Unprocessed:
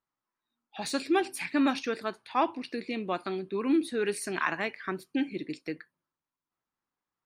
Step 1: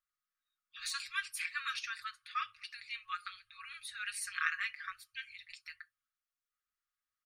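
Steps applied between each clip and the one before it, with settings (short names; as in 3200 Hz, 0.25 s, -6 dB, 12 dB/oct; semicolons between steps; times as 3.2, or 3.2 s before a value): FFT band-reject 110–1100 Hz; comb 5.6 ms, depth 63%; gain -4 dB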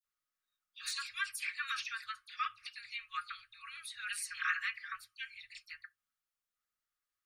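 dispersion lows, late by 50 ms, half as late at 2900 Hz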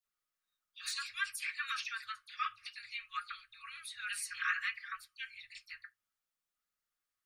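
flange 0.6 Hz, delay 4 ms, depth 7.9 ms, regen -49%; gain +4 dB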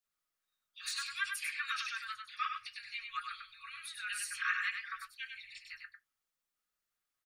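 echo 99 ms -5.5 dB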